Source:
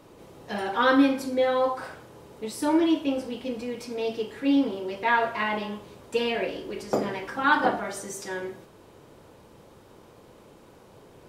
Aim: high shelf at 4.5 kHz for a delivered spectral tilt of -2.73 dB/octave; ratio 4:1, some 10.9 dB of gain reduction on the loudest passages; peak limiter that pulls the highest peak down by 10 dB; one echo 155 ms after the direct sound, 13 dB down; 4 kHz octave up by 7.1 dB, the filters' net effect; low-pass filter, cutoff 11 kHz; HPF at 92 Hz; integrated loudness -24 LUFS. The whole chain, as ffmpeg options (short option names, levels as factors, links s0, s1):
-af "highpass=92,lowpass=11000,equalizer=f=4000:t=o:g=5,highshelf=f=4500:g=9,acompressor=threshold=0.0398:ratio=4,alimiter=level_in=1.06:limit=0.0631:level=0:latency=1,volume=0.944,aecho=1:1:155:0.224,volume=3.16"